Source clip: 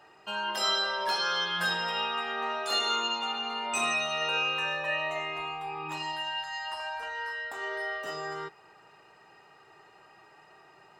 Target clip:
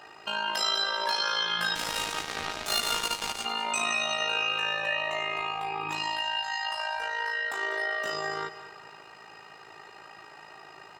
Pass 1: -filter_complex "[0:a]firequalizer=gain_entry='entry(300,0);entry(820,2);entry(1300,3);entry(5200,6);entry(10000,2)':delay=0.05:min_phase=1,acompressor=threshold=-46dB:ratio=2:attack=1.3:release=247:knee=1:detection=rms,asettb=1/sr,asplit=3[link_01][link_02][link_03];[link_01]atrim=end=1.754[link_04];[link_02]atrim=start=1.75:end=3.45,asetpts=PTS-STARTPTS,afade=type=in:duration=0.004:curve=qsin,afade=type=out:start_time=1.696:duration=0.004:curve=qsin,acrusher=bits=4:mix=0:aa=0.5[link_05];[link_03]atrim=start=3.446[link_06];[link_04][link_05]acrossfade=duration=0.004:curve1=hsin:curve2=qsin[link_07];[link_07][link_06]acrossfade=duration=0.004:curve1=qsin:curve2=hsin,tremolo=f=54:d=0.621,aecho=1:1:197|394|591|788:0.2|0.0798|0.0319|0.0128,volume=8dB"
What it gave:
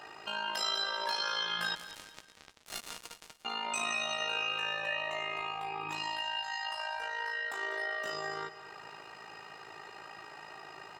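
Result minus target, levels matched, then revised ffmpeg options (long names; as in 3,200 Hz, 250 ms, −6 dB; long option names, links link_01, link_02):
downward compressor: peak gain reduction +5.5 dB
-filter_complex "[0:a]firequalizer=gain_entry='entry(300,0);entry(820,2);entry(1300,3);entry(5200,6);entry(10000,2)':delay=0.05:min_phase=1,acompressor=threshold=-35dB:ratio=2:attack=1.3:release=247:knee=1:detection=rms,asettb=1/sr,asplit=3[link_01][link_02][link_03];[link_01]atrim=end=1.754[link_04];[link_02]atrim=start=1.75:end=3.45,asetpts=PTS-STARTPTS,afade=type=in:duration=0.004:curve=qsin,afade=type=out:start_time=1.696:duration=0.004:curve=qsin,acrusher=bits=4:mix=0:aa=0.5[link_05];[link_03]atrim=start=3.446[link_06];[link_04][link_05]acrossfade=duration=0.004:curve1=hsin:curve2=qsin[link_07];[link_07][link_06]acrossfade=duration=0.004:curve1=qsin:curve2=hsin,tremolo=f=54:d=0.621,aecho=1:1:197|394|591|788:0.2|0.0798|0.0319|0.0128,volume=8dB"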